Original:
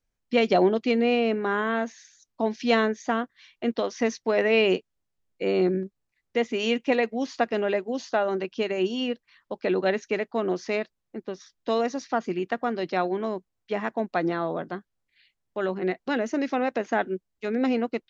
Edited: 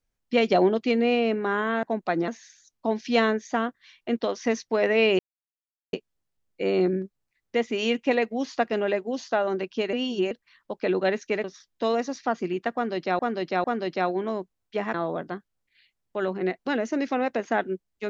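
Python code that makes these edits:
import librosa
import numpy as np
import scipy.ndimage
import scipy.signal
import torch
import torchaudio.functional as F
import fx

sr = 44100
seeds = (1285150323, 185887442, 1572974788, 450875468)

y = fx.edit(x, sr, fx.insert_silence(at_s=4.74, length_s=0.74),
    fx.reverse_span(start_s=8.74, length_s=0.38),
    fx.cut(start_s=10.25, length_s=1.05),
    fx.repeat(start_s=12.6, length_s=0.45, count=3),
    fx.move(start_s=13.9, length_s=0.45, to_s=1.83), tone=tone)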